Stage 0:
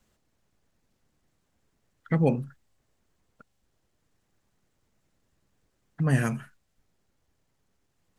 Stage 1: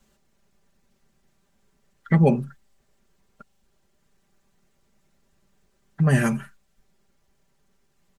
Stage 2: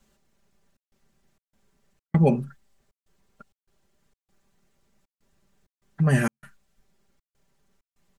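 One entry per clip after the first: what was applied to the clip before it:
comb 5.1 ms, depth 67%; gain +4 dB
step gate "xxxxx.xxx.xxx." 98 bpm -60 dB; gain -1.5 dB

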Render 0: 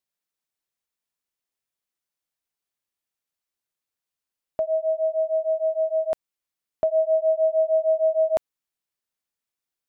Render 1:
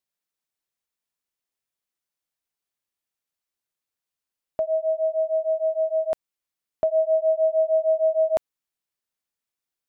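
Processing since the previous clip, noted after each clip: nothing audible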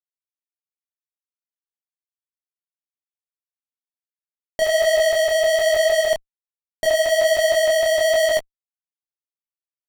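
fuzz box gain 49 dB, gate -49 dBFS; detuned doubles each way 42 cents

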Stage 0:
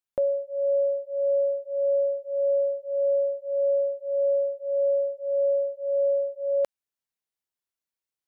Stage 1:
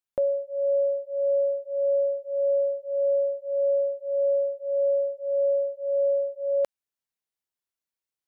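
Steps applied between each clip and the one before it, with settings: nothing audible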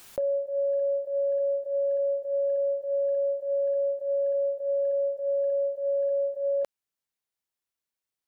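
in parallel at +1.5 dB: level quantiser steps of 22 dB; on the sum: limiter -22.5 dBFS, peak gain reduction 10.5 dB; backwards sustainer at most 92 dB/s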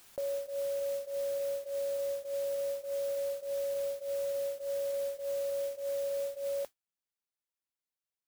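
modulation noise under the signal 16 dB; gain -8 dB

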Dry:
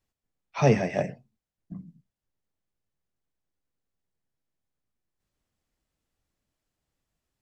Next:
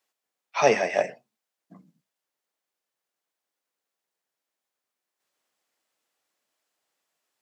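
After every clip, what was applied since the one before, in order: HPF 540 Hz 12 dB/oct; gain +6.5 dB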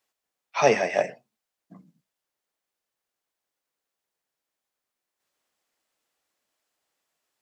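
low shelf 87 Hz +10.5 dB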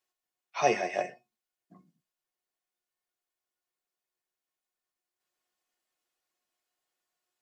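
resonator 360 Hz, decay 0.17 s, harmonics all, mix 80%; gain +3.5 dB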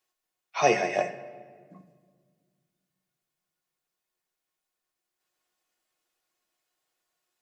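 shoebox room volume 2300 m³, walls mixed, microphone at 0.57 m; gain +4 dB

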